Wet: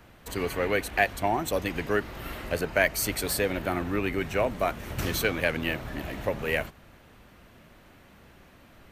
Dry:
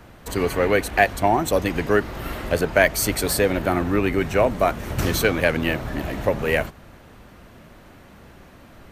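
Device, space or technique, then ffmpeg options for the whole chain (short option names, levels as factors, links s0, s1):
presence and air boost: -filter_complex "[0:a]asettb=1/sr,asplit=3[s0][s1][s2];[s0]atrim=end=2.444[s3];[s1]atrim=start=2.44:end=3.05,asetpts=PTS-STARTPTS,afade=t=in:d=0.004:c=qsin,afade=t=out:st=0.606:d=0.004:c=qsin,bandreject=f=3400:w=13[s4];[s2]atrim=start=3.046[s5];[s3][s4]acrossfade=d=0.004:c1=hsin:c2=qsin[s6];[s6][s5]acrossfade=d=0.004:c1=qsin:c2=hsin,equalizer=f=2700:t=o:w=1.5:g=4,highshelf=f=12000:g=6,volume=0.398"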